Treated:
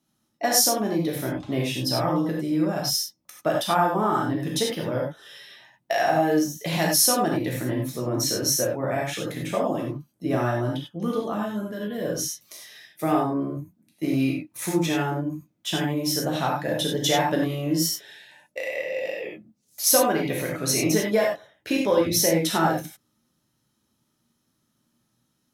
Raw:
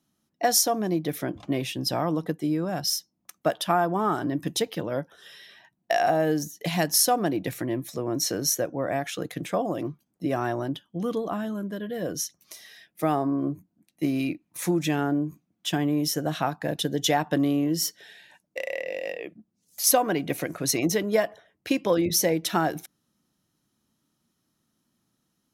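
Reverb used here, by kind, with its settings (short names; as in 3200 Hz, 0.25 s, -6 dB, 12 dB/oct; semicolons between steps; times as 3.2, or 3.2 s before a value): non-linear reverb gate 0.12 s flat, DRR -2.5 dB; gain -1.5 dB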